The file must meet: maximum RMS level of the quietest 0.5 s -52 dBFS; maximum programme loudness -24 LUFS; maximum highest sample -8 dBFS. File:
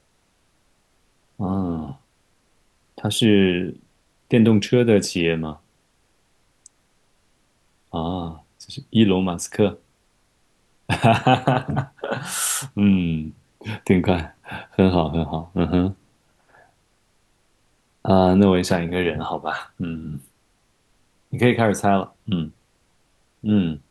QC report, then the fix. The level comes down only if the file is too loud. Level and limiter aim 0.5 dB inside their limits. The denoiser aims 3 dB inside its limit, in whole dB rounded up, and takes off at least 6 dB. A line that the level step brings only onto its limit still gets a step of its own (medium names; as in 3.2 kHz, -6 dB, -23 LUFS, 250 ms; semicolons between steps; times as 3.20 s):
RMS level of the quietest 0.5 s -64 dBFS: pass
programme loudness -21.0 LUFS: fail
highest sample -2.5 dBFS: fail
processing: trim -3.5 dB; peak limiter -8.5 dBFS